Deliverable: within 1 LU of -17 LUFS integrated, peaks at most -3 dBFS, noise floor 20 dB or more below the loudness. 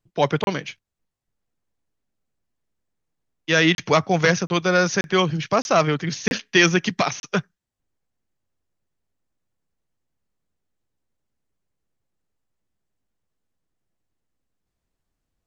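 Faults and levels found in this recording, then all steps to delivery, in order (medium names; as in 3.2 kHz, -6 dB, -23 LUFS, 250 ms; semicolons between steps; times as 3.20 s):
dropouts 7; longest dropout 31 ms; loudness -20.5 LUFS; peak level -3.0 dBFS; loudness target -17.0 LUFS
-> interpolate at 0.44/3.75/4.47/5.01/5.62/6.28/7.20 s, 31 ms; trim +3.5 dB; peak limiter -3 dBFS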